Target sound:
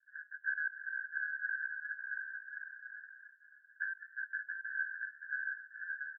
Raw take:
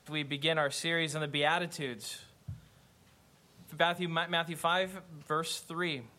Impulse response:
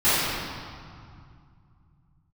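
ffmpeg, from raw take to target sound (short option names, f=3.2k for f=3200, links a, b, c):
-filter_complex "[0:a]acrusher=samples=42:mix=1:aa=0.000001,asuperpass=centerf=1600:order=8:qfactor=7.5,asplit=2[a][b];[b]aecho=0:1:680|1122|1409|1596|1717:0.631|0.398|0.251|0.158|0.1[c];[a][c]amix=inputs=2:normalize=0,volume=6.5dB"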